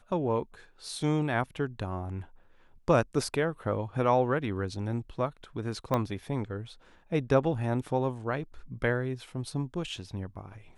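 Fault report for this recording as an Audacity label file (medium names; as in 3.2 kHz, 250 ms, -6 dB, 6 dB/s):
5.940000	5.940000	pop -15 dBFS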